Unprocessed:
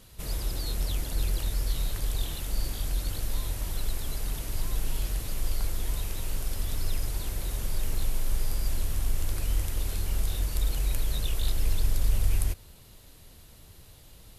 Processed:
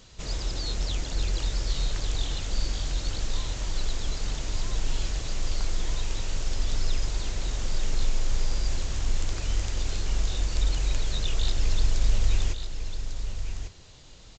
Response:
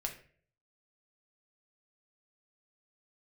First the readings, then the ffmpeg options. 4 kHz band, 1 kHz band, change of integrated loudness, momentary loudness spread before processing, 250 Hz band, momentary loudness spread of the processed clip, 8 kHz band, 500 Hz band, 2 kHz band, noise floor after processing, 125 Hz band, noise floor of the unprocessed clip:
+5.0 dB, +3.0 dB, +1.0 dB, 5 LU, +2.0 dB, 8 LU, +1.0 dB, +2.5 dB, +4.0 dB, -48 dBFS, +1.0 dB, -51 dBFS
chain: -af "highshelf=f=5.4k:g=6,aresample=16000,aresample=44100,equalizer=f=80:t=o:w=2.8:g=-3,aecho=1:1:1148:0.376,volume=2.5dB"

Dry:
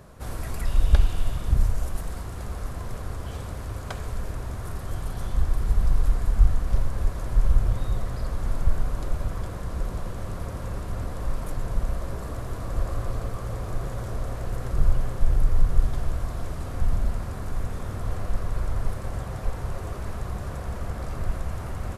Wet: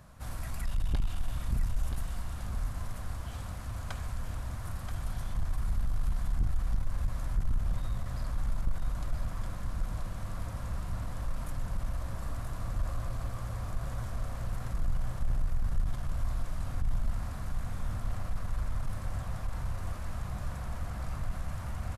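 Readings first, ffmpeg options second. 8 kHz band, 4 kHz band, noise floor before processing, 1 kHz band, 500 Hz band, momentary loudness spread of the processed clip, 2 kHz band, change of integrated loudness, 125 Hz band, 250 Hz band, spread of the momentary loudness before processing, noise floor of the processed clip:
n/a, -5.5 dB, -34 dBFS, -6.5 dB, -11.5 dB, 5 LU, -5.5 dB, -7.0 dB, -6.5 dB, -7.0 dB, 9 LU, -39 dBFS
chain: -af "equalizer=f=410:w=1.9:g=-13,asoftclip=type=tanh:threshold=-19dB,aecho=1:1:980:0.447,volume=-4.5dB"

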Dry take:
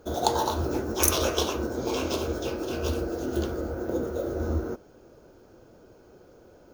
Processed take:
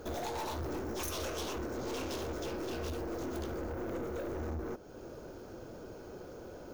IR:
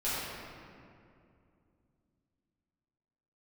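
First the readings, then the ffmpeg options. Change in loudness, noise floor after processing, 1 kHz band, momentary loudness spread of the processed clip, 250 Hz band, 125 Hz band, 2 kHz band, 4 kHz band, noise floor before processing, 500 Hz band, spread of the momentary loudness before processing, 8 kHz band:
-11.5 dB, -49 dBFS, -10.5 dB, 11 LU, -9.0 dB, -9.5 dB, -7.5 dB, -11.5 dB, -54 dBFS, -9.0 dB, 8 LU, -14.5 dB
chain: -af "acompressor=threshold=-44dB:ratio=2,aeval=exprs='(tanh(126*val(0)+0.3)-tanh(0.3))/126':c=same,volume=7dB"

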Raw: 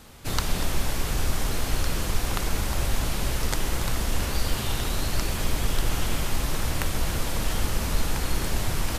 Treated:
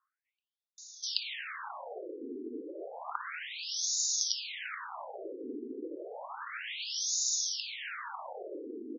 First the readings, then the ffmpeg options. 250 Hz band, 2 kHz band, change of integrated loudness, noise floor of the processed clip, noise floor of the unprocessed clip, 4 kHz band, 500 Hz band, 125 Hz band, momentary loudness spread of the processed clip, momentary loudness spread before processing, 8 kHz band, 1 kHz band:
-11.5 dB, -8.5 dB, -7.0 dB, under -85 dBFS, -30 dBFS, -3.5 dB, -8.5 dB, under -40 dB, 15 LU, 1 LU, -1.5 dB, -9.5 dB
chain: -filter_complex "[0:a]acrossover=split=650[a][b];[b]adelay=780[c];[a][c]amix=inputs=2:normalize=0,aexciter=amount=5.3:drive=6.9:freq=5.6k,afftfilt=real='re*between(b*sr/1024,330*pow(5100/330,0.5+0.5*sin(2*PI*0.31*pts/sr))/1.41,330*pow(5100/330,0.5+0.5*sin(2*PI*0.31*pts/sr))*1.41)':imag='im*between(b*sr/1024,330*pow(5100/330,0.5+0.5*sin(2*PI*0.31*pts/sr))/1.41,330*pow(5100/330,0.5+0.5*sin(2*PI*0.31*pts/sr))*1.41)':win_size=1024:overlap=0.75"

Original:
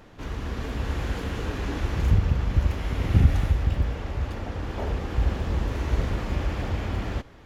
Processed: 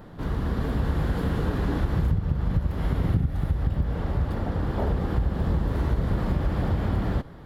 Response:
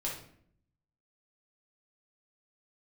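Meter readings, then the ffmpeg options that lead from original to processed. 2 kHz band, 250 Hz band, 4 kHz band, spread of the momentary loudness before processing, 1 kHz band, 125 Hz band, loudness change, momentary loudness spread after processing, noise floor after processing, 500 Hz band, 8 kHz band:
-2.5 dB, +3.5 dB, -4.5 dB, 10 LU, +1.0 dB, +0.5 dB, +0.5 dB, 3 LU, -42 dBFS, +2.0 dB, n/a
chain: -af "equalizer=f=160:t=o:w=0.67:g=8,equalizer=f=2.5k:t=o:w=0.67:g=-10,equalizer=f=6.3k:t=o:w=0.67:g=-12,acompressor=threshold=-23dB:ratio=16,volume=4dB"

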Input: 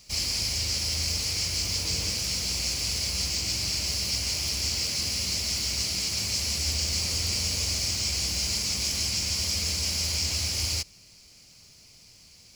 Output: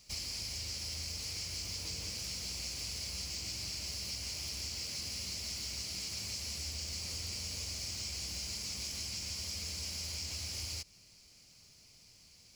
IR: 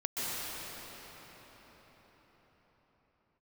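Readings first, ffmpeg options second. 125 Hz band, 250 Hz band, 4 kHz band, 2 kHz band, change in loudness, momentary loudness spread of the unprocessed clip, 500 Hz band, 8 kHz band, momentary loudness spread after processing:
-12.0 dB, -12.0 dB, -12.0 dB, -12.0 dB, -12.0 dB, 1 LU, -12.0 dB, -12.0 dB, 19 LU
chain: -af "acompressor=threshold=-30dB:ratio=6,volume=-7dB"

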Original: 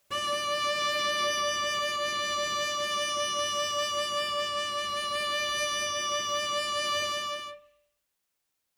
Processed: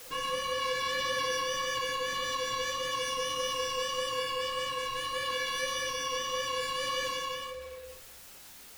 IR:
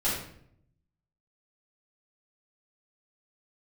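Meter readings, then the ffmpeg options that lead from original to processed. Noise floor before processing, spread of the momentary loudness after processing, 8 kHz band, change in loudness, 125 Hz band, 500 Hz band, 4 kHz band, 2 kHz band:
-81 dBFS, 12 LU, -4.0 dB, -3.0 dB, +0.5 dB, -1.5 dB, -3.5 dB, -2.5 dB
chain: -filter_complex "[0:a]aeval=exprs='val(0)+0.5*0.0158*sgn(val(0))':c=same,flanger=delay=4.9:depth=8.3:regen=38:speed=1.7:shape=triangular,afreqshift=-74,asplit=2[a][b];[1:a]atrim=start_sample=2205[c];[b][c]afir=irnorm=-1:irlink=0,volume=-14dB[d];[a][d]amix=inputs=2:normalize=0,volume=-3dB"

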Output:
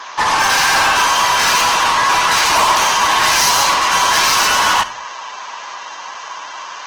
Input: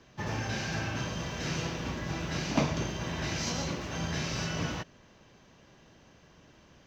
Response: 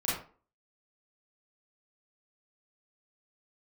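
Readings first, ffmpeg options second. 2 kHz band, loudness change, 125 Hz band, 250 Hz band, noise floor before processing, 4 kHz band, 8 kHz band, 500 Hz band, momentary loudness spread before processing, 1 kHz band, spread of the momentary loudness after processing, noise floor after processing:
+23.5 dB, +21.5 dB, -3.0 dB, +2.0 dB, -59 dBFS, +23.5 dB, +24.0 dB, +13.0 dB, 5 LU, +28.0 dB, 17 LU, -31 dBFS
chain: -filter_complex "[0:a]highshelf=f=3.3k:g=5.5,acontrast=84,aresample=16000,asoftclip=type=hard:threshold=-17.5dB,aresample=44100,highpass=f=1k:t=q:w=4.6,aeval=exprs='0.376*(cos(1*acos(clip(val(0)/0.376,-1,1)))-cos(1*PI/2))+0.168*(cos(5*acos(clip(val(0)/0.376,-1,1)))-cos(5*PI/2))+0.0668*(cos(6*acos(clip(val(0)/0.376,-1,1)))-cos(6*PI/2))+0.0668*(cos(8*acos(clip(val(0)/0.376,-1,1)))-cos(8*PI/2))':c=same,asoftclip=type=tanh:threshold=-20dB,asplit=2[a][b];[1:a]atrim=start_sample=2205,asetrate=29988,aresample=44100[c];[b][c]afir=irnorm=-1:irlink=0,volume=-23dB[d];[a][d]amix=inputs=2:normalize=0,volume=8.5dB" -ar 48000 -c:a libopus -b:a 16k

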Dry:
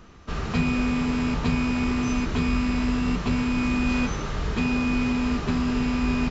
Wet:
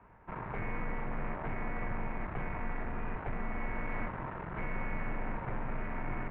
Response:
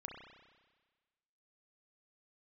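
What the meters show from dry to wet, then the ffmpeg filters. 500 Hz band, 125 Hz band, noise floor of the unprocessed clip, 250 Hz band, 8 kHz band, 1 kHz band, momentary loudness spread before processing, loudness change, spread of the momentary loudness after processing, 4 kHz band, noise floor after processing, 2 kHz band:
-9.0 dB, -13.0 dB, -32 dBFS, -20.5 dB, n/a, -7.0 dB, 3 LU, -14.5 dB, 2 LU, -29.0 dB, -43 dBFS, -10.5 dB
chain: -af "aeval=exprs='(tanh(17.8*val(0)+0.6)-tanh(0.6))/17.8':c=same,highpass=f=250:t=q:w=0.5412,highpass=f=250:t=q:w=1.307,lowpass=f=2.3k:t=q:w=0.5176,lowpass=f=2.3k:t=q:w=0.7071,lowpass=f=2.3k:t=q:w=1.932,afreqshift=-270,bandreject=f=84.32:t=h:w=4,bandreject=f=168.64:t=h:w=4,bandreject=f=252.96:t=h:w=4,bandreject=f=337.28:t=h:w=4,bandreject=f=421.6:t=h:w=4,bandreject=f=505.92:t=h:w=4,bandreject=f=590.24:t=h:w=4,bandreject=f=674.56:t=h:w=4,bandreject=f=758.88:t=h:w=4,bandreject=f=843.2:t=h:w=4,bandreject=f=927.52:t=h:w=4,bandreject=f=1.01184k:t=h:w=4,bandreject=f=1.09616k:t=h:w=4,bandreject=f=1.18048k:t=h:w=4,bandreject=f=1.2648k:t=h:w=4,bandreject=f=1.34912k:t=h:w=4,bandreject=f=1.43344k:t=h:w=4,bandreject=f=1.51776k:t=h:w=4,bandreject=f=1.60208k:t=h:w=4,bandreject=f=1.6864k:t=h:w=4,bandreject=f=1.77072k:t=h:w=4,bandreject=f=1.85504k:t=h:w=4,bandreject=f=1.93936k:t=h:w=4,bandreject=f=2.02368k:t=h:w=4,bandreject=f=2.108k:t=h:w=4,bandreject=f=2.19232k:t=h:w=4,bandreject=f=2.27664k:t=h:w=4,bandreject=f=2.36096k:t=h:w=4,bandreject=f=2.44528k:t=h:w=4,volume=-1.5dB"

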